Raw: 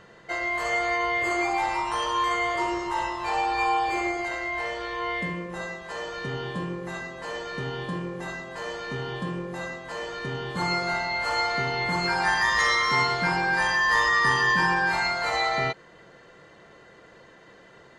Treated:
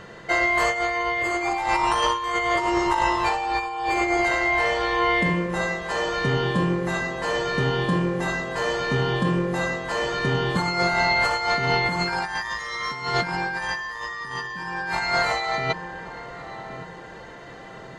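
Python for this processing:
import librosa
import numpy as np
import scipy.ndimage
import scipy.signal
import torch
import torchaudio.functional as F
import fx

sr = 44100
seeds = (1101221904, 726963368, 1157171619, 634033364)

y = fx.low_shelf(x, sr, hz=200.0, db=2.5)
y = fx.echo_filtered(y, sr, ms=1122, feedback_pct=56, hz=910.0, wet_db=-18.0)
y = fx.over_compress(y, sr, threshold_db=-28.0, ratio=-0.5)
y = y * 10.0 ** (5.5 / 20.0)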